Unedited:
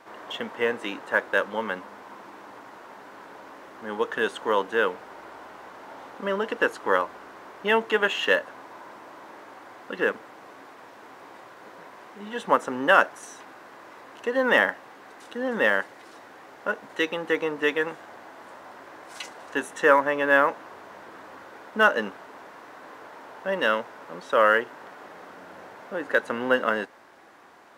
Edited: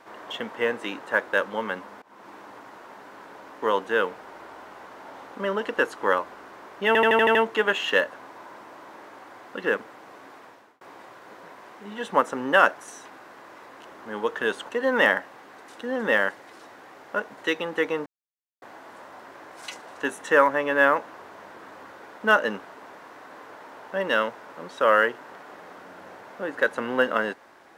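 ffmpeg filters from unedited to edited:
ffmpeg -i in.wav -filter_complex "[0:a]asplit=14[link_01][link_02][link_03][link_04][link_05][link_06][link_07][link_08][link_09][link_10][link_11][link_12][link_13][link_14];[link_01]atrim=end=2.02,asetpts=PTS-STARTPTS,afade=type=out:start_time=2.016:duration=0.004:curve=hsin:silence=0.0749894[link_15];[link_02]atrim=start=2.02:end=3.622,asetpts=PTS-STARTPTS,afade=type=in:duration=0.29:silence=0.0749894[link_16];[link_03]atrim=start=4.448:end=7.782[link_17];[link_04]atrim=start=7.698:end=7.782[link_18];[link_05]atrim=start=7.698:end=7.782[link_19];[link_06]atrim=start=7.698:end=7.782[link_20];[link_07]atrim=start=7.698:end=7.782[link_21];[link_08]atrim=start=7.698:end=7.782[link_22];[link_09]atrim=start=7.698:end=11.16,asetpts=PTS-STARTPTS,afade=type=out:start_time=3.072:duration=0.39[link_23];[link_10]atrim=start=11.16:end=14.212,asetpts=PTS-STARTPTS,afade=type=in:duration=0.004:curve=hsin[link_24];[link_11]atrim=start=3.618:end=4.452[link_25];[link_12]atrim=start=14.208:end=17.58,asetpts=PTS-STARTPTS,afade=type=out:start_time=3.368:duration=0.004:curve=hsin[link_26];[link_13]atrim=start=17.58:end=18.14,asetpts=PTS-STARTPTS,volume=0[link_27];[link_14]atrim=start=18.14,asetpts=PTS-STARTPTS,afade=type=in:duration=0.004:curve=hsin[link_28];[link_15][link_16]concat=n=2:v=0:a=1[link_29];[link_29][link_17]acrossfade=duration=0.004:curve1=hsin:curve2=hsin[link_30];[link_30][link_18]acrossfade=duration=0.004:curve1=hsin:curve2=hsin[link_31];[link_31][link_19]acrossfade=duration=0.004:curve1=hsin:curve2=hsin[link_32];[link_32][link_20]acrossfade=duration=0.004:curve1=hsin:curve2=hsin[link_33];[link_33][link_21]acrossfade=duration=0.004:curve1=hsin:curve2=hsin[link_34];[link_34][link_22]acrossfade=duration=0.004:curve1=hsin:curve2=hsin[link_35];[link_23][link_24]concat=n=2:v=0:a=1[link_36];[link_35][link_36]acrossfade=duration=0.004:curve1=hsin:curve2=hsin[link_37];[link_37][link_25]acrossfade=duration=0.004:curve1=hsin:curve2=hsin[link_38];[link_26][link_27][link_28]concat=n=3:v=0:a=1[link_39];[link_38][link_39]acrossfade=duration=0.004:curve1=hsin:curve2=hsin" out.wav

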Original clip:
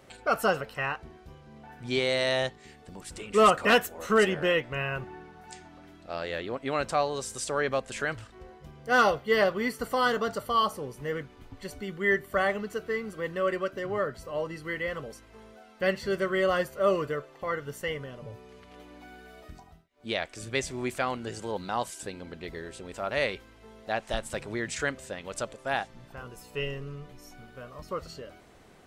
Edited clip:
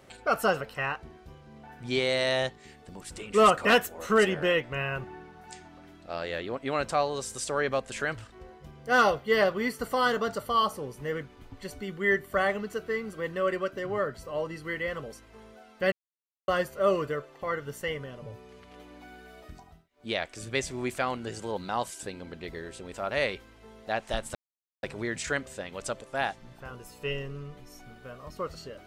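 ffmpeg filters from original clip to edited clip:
ffmpeg -i in.wav -filter_complex "[0:a]asplit=4[link_01][link_02][link_03][link_04];[link_01]atrim=end=15.92,asetpts=PTS-STARTPTS,afade=type=out:start_time=15.916:duration=0.004:curve=hsin[link_05];[link_02]atrim=start=15.92:end=16.48,asetpts=PTS-STARTPTS,volume=0[link_06];[link_03]atrim=start=16.48:end=24.35,asetpts=PTS-STARTPTS,afade=type=in:duration=0.004:curve=hsin,afade=type=out:start_time=7.866:duration=0.004:curve=hsin,apad=pad_dur=0.48[link_07];[link_04]atrim=start=24.35,asetpts=PTS-STARTPTS,afade=type=in:duration=0.004:curve=hsin[link_08];[link_05][link_06][link_07][link_08]concat=n=4:v=0:a=1" out.wav

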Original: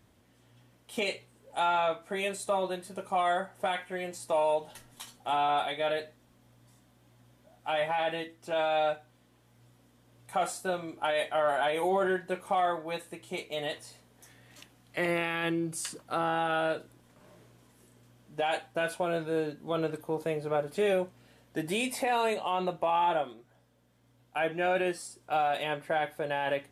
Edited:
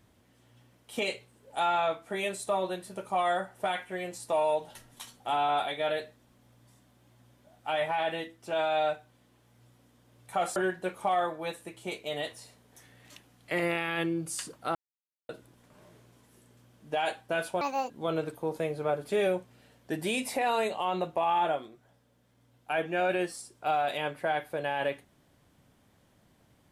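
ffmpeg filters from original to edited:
ffmpeg -i in.wav -filter_complex "[0:a]asplit=6[link_01][link_02][link_03][link_04][link_05][link_06];[link_01]atrim=end=10.562[link_07];[link_02]atrim=start=12.018:end=16.21,asetpts=PTS-STARTPTS,afade=type=out:start_time=4.188:duration=0.004:curve=hsin[link_08];[link_03]atrim=start=16.21:end=16.75,asetpts=PTS-STARTPTS,volume=0[link_09];[link_04]atrim=start=16.75:end=19.074,asetpts=PTS-STARTPTS,afade=type=in:duration=0.004:curve=hsin[link_10];[link_05]atrim=start=19.07:end=19.56,asetpts=PTS-STARTPTS,asetrate=74529,aresample=44100,atrim=end_sample=12786,asetpts=PTS-STARTPTS[link_11];[link_06]atrim=start=19.556[link_12];[link_08][link_09][link_10]concat=n=3:v=0:a=1[link_13];[link_07][link_13]acrossfade=duration=0.004:curve1=hsin:curve2=hsin[link_14];[link_14][link_11]acrossfade=duration=0.004:curve1=hsin:curve2=hsin[link_15];[link_15][link_12]acrossfade=duration=0.004:curve1=hsin:curve2=hsin" out.wav

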